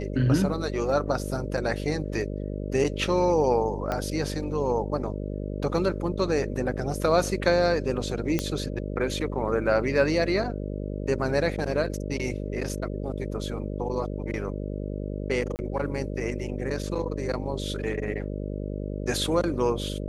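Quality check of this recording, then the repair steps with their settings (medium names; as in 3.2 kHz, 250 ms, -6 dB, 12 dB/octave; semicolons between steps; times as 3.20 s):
buzz 50 Hz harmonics 12 -32 dBFS
3.92 s: pop -15 dBFS
8.39 s: pop -10 dBFS
15.56–15.59 s: dropout 29 ms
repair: de-click; de-hum 50 Hz, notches 12; interpolate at 15.56 s, 29 ms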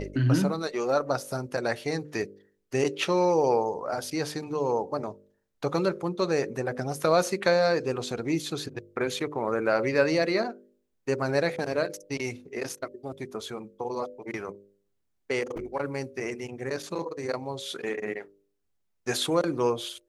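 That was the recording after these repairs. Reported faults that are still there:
3.92 s: pop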